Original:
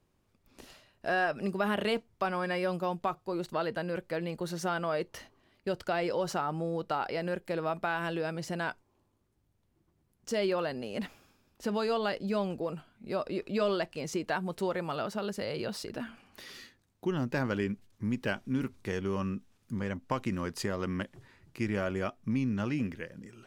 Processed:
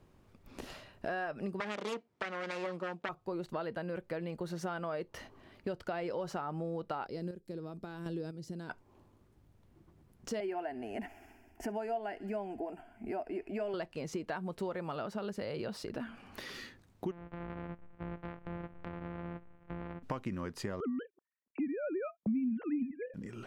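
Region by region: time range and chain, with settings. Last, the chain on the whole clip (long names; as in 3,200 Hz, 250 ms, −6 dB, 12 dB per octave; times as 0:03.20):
0:01.60–0:03.09: phase distortion by the signal itself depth 0.49 ms + band-pass filter 230–7,800 Hz
0:07.06–0:08.70: flat-topped bell 1,300 Hz −14 dB 2.7 octaves + square-wave tremolo 1 Hz, depth 65%, duty 25%
0:10.40–0:13.74: parametric band 690 Hz +11.5 dB 0.21 octaves + phaser with its sweep stopped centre 790 Hz, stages 8 + delay with a high-pass on its return 65 ms, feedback 70%, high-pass 1,800 Hz, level −18.5 dB
0:17.11–0:20.03: samples sorted by size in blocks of 256 samples + low-pass filter 2,400 Hz 24 dB per octave + downward compressor 3 to 1, threshold −49 dBFS
0:20.80–0:23.14: three sine waves on the formant tracks + noise gate −60 dBFS, range −36 dB + low-shelf EQ 380 Hz +11 dB
whole clip: downward compressor 3 to 1, threshold −50 dBFS; high-shelf EQ 3,100 Hz −8.5 dB; level +10 dB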